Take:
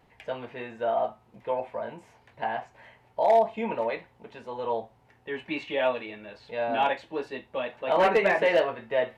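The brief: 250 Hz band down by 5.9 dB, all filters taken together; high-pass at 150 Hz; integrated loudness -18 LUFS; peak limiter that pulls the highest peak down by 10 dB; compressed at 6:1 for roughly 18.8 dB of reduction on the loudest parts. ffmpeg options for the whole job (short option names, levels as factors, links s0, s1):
-af "highpass=150,equalizer=f=250:t=o:g=-7.5,acompressor=threshold=0.0112:ratio=6,volume=25.1,alimiter=limit=0.422:level=0:latency=1"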